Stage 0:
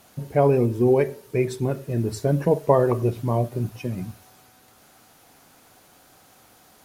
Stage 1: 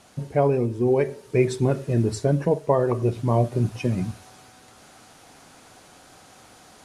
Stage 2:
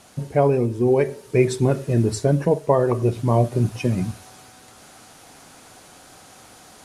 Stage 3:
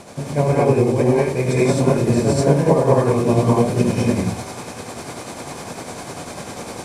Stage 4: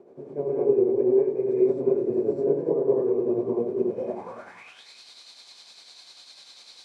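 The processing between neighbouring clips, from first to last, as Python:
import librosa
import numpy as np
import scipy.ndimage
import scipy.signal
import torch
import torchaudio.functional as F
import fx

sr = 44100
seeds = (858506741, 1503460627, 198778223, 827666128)

y1 = scipy.signal.sosfilt(scipy.signal.butter(4, 10000.0, 'lowpass', fs=sr, output='sos'), x)
y1 = fx.rider(y1, sr, range_db=5, speed_s=0.5)
y2 = fx.high_shelf(y1, sr, hz=9100.0, db=6.5)
y2 = F.gain(torch.from_numpy(y2), 2.5).numpy()
y3 = fx.bin_compress(y2, sr, power=0.6)
y3 = fx.rev_gated(y3, sr, seeds[0], gate_ms=270, shape='rising', drr_db=-7.0)
y3 = y3 * (1.0 - 0.44 / 2.0 + 0.44 / 2.0 * np.cos(2.0 * np.pi * 10.0 * (np.arange(len(y3)) / sr)))
y3 = F.gain(torch.from_numpy(y3), -4.5).numpy()
y4 = fx.filter_sweep_bandpass(y3, sr, from_hz=390.0, to_hz=4100.0, start_s=3.89, end_s=4.88, q=6.3)
y4 = y4 + 10.0 ** (-10.5 / 20.0) * np.pad(y4, (int(286 * sr / 1000.0), 0))[:len(y4)]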